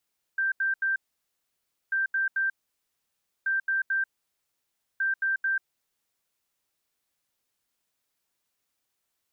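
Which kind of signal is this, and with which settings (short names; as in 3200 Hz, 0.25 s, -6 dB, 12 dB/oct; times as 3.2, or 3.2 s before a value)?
beep pattern sine 1570 Hz, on 0.14 s, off 0.08 s, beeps 3, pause 0.96 s, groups 4, -23 dBFS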